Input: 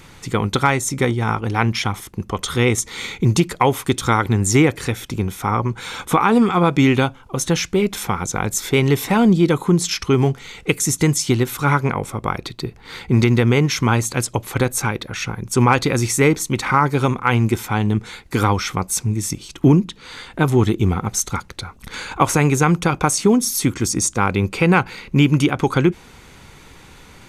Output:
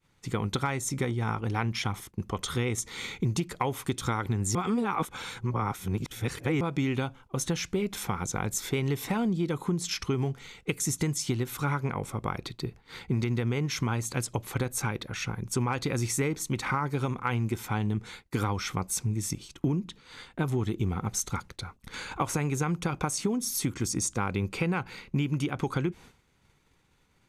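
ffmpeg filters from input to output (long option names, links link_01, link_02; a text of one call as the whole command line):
ffmpeg -i in.wav -filter_complex "[0:a]asplit=3[link_01][link_02][link_03];[link_01]atrim=end=4.552[link_04];[link_02]atrim=start=4.548:end=6.612,asetpts=PTS-STARTPTS,areverse[link_05];[link_03]atrim=start=6.608[link_06];[link_04][link_05]acrossfade=duration=0.004:curve1=hsin:curve2=hsin[link_07];[link_07][link_06]acrossfade=duration=0.004:curve1=hsin:curve2=hsin,agate=range=-33dB:threshold=-32dB:ratio=3:detection=peak,equalizer=frequency=130:width_type=o:width=1.5:gain=2.5,acompressor=threshold=-16dB:ratio=6,volume=-8.5dB" out.wav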